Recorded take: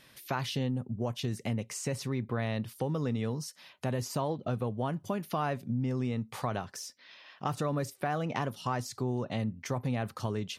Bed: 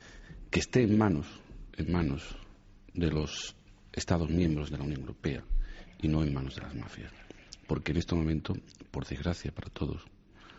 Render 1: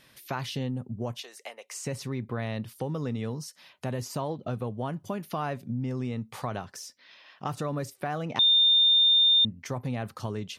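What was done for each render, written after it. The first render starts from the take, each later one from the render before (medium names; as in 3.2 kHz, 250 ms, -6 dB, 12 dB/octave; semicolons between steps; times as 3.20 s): 1.21–1.74 s: high-pass 550 Hz 24 dB/octave; 8.39–9.45 s: bleep 3.62 kHz -17 dBFS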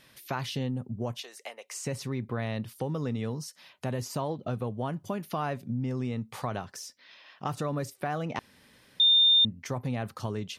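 8.39–9.00 s: room tone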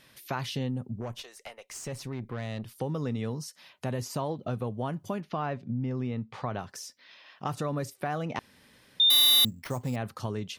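1.00–2.78 s: valve stage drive 30 dB, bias 0.5; 5.20–6.59 s: distance through air 150 m; 9.10–9.96 s: sample-rate reducer 7.5 kHz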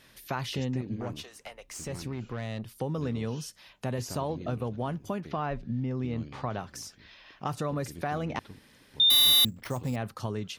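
add bed -14.5 dB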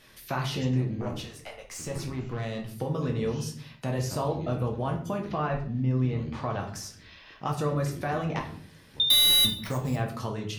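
simulated room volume 63 m³, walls mixed, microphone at 0.63 m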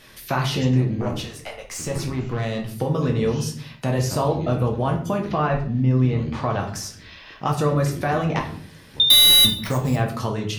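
trim +7.5 dB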